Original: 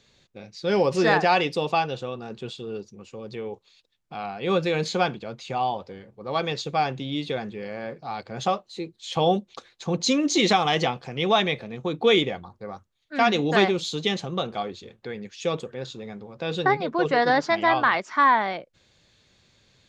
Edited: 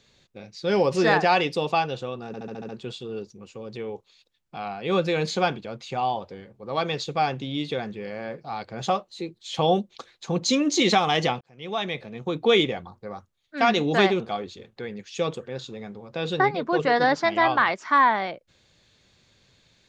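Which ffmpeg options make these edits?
-filter_complex "[0:a]asplit=9[s0][s1][s2][s3][s4][s5][s6][s7][s8];[s0]atrim=end=2.342[s9];[s1]atrim=start=2.268:end=2.342[s10];[s2]atrim=start=2.268:end=2.342[s11];[s3]atrim=start=2.268:end=2.342[s12];[s4]atrim=start=2.268:end=2.342[s13];[s5]atrim=start=2.268:end=2.342[s14];[s6]atrim=start=2.268:end=10.99,asetpts=PTS-STARTPTS,afade=t=out:st=8.718:d=0.004:c=hsin[s15];[s7]atrim=start=10.99:end=13.782,asetpts=PTS-STARTPTS,afade=t=in:d=0.9[s16];[s8]atrim=start=14.458[s17];[s9][s10]acrossfade=d=0.004:c1=hsin:c2=hsin[s18];[s18][s11]acrossfade=d=0.004:c1=hsin:c2=hsin[s19];[s19][s12]acrossfade=d=0.004:c1=hsin:c2=hsin[s20];[s20][s13]acrossfade=d=0.004:c1=hsin:c2=hsin[s21];[s21][s14]acrossfade=d=0.004:c1=hsin:c2=hsin[s22];[s15][s16]concat=n=2:v=0:a=1[s23];[s22][s23]acrossfade=d=0.004:c1=hsin:c2=hsin[s24];[s24][s17]acrossfade=d=0.004:c1=hsin:c2=hsin"

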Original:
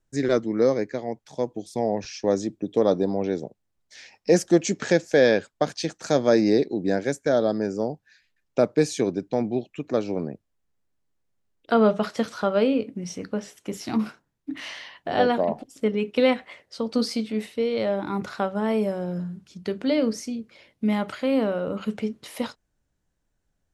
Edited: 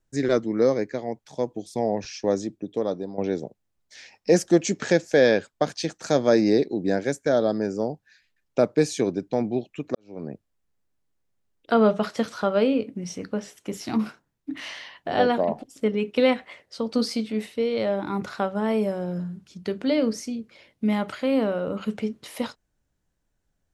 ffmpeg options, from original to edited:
-filter_complex "[0:a]asplit=3[s0][s1][s2];[s0]atrim=end=3.18,asetpts=PTS-STARTPTS,afade=t=out:st=2.17:d=1.01:silence=0.251189[s3];[s1]atrim=start=3.18:end=9.95,asetpts=PTS-STARTPTS,afade=t=in:d=0.004:c=hsin:silence=0.251189,afade=t=out:st=6.766:d=0.004:c=hsin[s4];[s2]atrim=start=9.95,asetpts=PTS-STARTPTS,afade=t=in:d=0.37:c=qua[s5];[s3][s4][s5]concat=n=3:v=0:a=1"

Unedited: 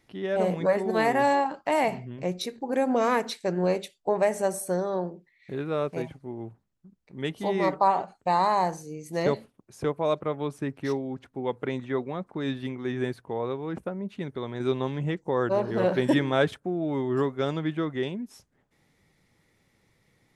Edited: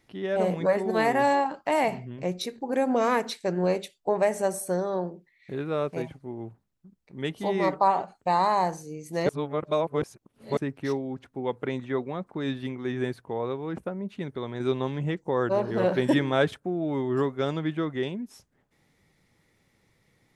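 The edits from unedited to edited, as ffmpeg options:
-filter_complex "[0:a]asplit=3[s0][s1][s2];[s0]atrim=end=9.292[s3];[s1]atrim=start=9.288:end=10.572,asetpts=PTS-STARTPTS,areverse[s4];[s2]atrim=start=10.568[s5];[s3][s4]acrossfade=d=0.004:c1=hsin:c2=hsin[s6];[s6][s5]acrossfade=d=0.004:c1=hsin:c2=hsin"

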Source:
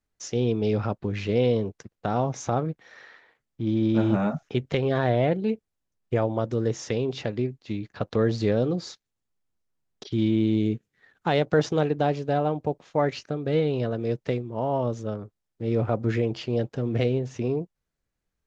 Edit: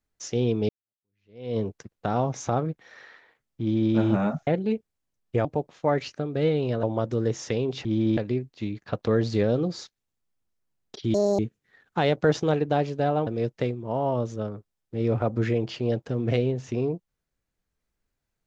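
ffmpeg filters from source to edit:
-filter_complex "[0:a]asplit=10[s0][s1][s2][s3][s4][s5][s6][s7][s8][s9];[s0]atrim=end=0.69,asetpts=PTS-STARTPTS,afade=t=out:st=0.686:d=0.004:c=hsin[s10];[s1]atrim=start=0.69:end=4.472,asetpts=PTS-STARTPTS,afade=t=in:d=0.89:c=exp[s11];[s2]atrim=start=5.248:end=6.232[s12];[s3]atrim=start=12.558:end=13.942[s13];[s4]atrim=start=6.228:end=7.252[s14];[s5]atrim=start=3.608:end=3.932[s15];[s6]atrim=start=7.248:end=10.224[s16];[s7]atrim=start=10.22:end=10.68,asetpts=PTS-STARTPTS,asetrate=82026,aresample=44100,atrim=end_sample=10906,asetpts=PTS-STARTPTS[s17];[s8]atrim=start=10.676:end=12.562[s18];[s9]atrim=start=13.938[s19];[s10][s11]concat=n=2:v=0:a=1[s20];[s20][s12]acrossfade=d=0.004:c1=hsin:c2=hsin[s21];[s21][s13]acrossfade=d=0.004:c1=hsin:c2=hsin[s22];[s22][s14]acrossfade=d=0.004:c1=hsin:c2=hsin[s23];[s23][s15]acrossfade=d=0.004:c1=hsin:c2=hsin[s24];[s24][s16]acrossfade=d=0.004:c1=hsin:c2=hsin[s25];[s25][s17]acrossfade=d=0.004:c1=hsin:c2=hsin[s26];[s26][s18]acrossfade=d=0.004:c1=hsin:c2=hsin[s27];[s27][s19]acrossfade=d=0.004:c1=hsin:c2=hsin"

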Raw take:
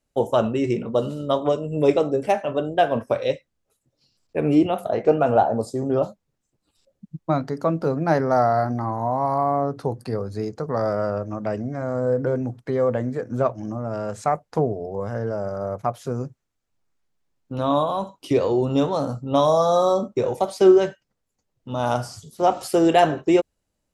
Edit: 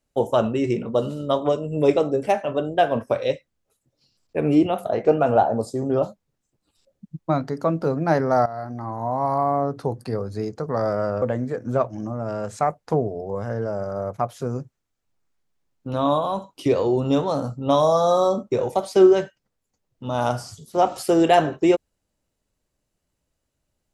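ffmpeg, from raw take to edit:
-filter_complex "[0:a]asplit=3[s0][s1][s2];[s0]atrim=end=8.46,asetpts=PTS-STARTPTS,afade=t=out:st=8.456:d=0.004:c=hsin:silence=0.158489[s3];[s1]atrim=start=8.46:end=11.222,asetpts=PTS-STARTPTS,afade=t=in:d=0.81:silence=0.158489[s4];[s2]atrim=start=12.868[s5];[s3][s4]concat=n=2:v=0:a=1[s6];[s6][s5]acrossfade=d=0.004:c1=hsin:c2=hsin"

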